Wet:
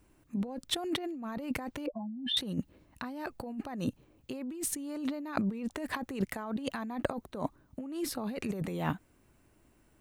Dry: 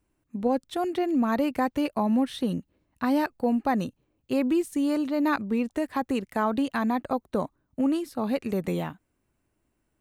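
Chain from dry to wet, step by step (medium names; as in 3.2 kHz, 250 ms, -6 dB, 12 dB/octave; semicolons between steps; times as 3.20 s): 1.86–2.37 s: spectral contrast enhancement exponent 3.4; compressor with a negative ratio -36 dBFS, ratio -1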